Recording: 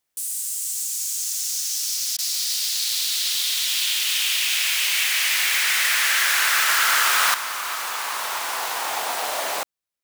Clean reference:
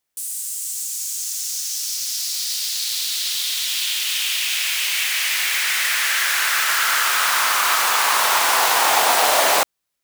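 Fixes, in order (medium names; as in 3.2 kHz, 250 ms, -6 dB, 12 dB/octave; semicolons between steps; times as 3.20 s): interpolate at 2.17 s, 15 ms; trim 0 dB, from 7.34 s +10 dB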